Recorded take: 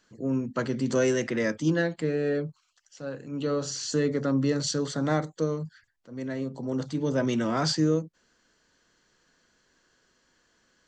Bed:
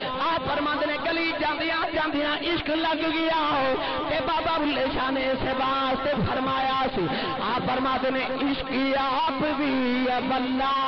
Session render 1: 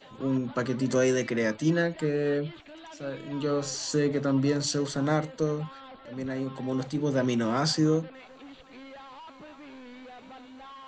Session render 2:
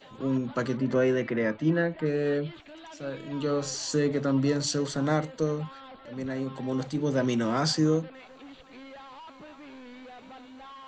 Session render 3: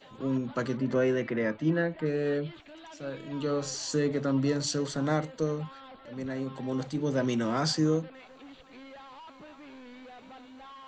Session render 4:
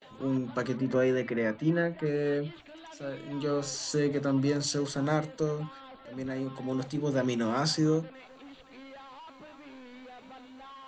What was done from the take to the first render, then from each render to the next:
mix in bed −22 dB
0:00.77–0:02.06: low-pass filter 2,500 Hz
level −2 dB
mains-hum notches 60/120/180/240/300 Hz; noise gate with hold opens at −47 dBFS

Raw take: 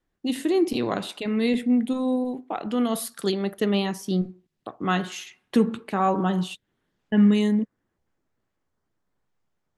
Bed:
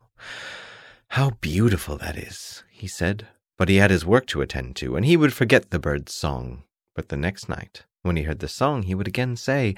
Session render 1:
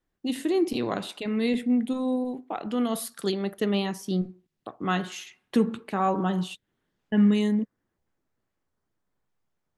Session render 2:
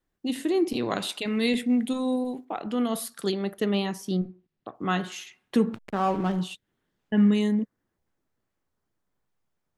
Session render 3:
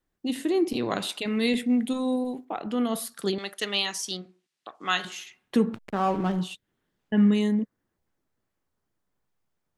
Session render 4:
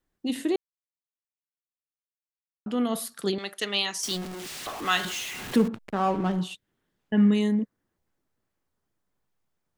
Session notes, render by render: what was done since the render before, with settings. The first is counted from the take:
level −2.5 dB
0:00.90–0:02.45: high-shelf EQ 2,100 Hz +8.5 dB; 0:04.17–0:04.75: high-frequency loss of the air 160 metres; 0:05.73–0:06.40: slack as between gear wheels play −31 dBFS
0:03.38–0:05.05: meter weighting curve ITU-R 468
0:00.56–0:02.66: silence; 0:04.03–0:05.68: converter with a step at zero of −31.5 dBFS

